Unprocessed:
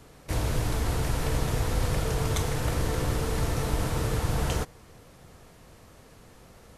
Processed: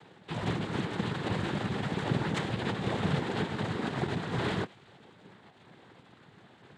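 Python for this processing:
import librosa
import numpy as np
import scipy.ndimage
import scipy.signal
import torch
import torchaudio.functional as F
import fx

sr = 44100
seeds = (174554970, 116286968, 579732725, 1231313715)

y = fx.peak_eq(x, sr, hz=540.0, db=-3.0, octaves=1.8)
y = fx.lpc_vocoder(y, sr, seeds[0], excitation='pitch_kept', order=10)
y = fx.echo_wet_highpass(y, sr, ms=111, feedback_pct=61, hz=2500.0, wet_db=-19.5)
y = fx.noise_vocoder(y, sr, seeds[1], bands=6)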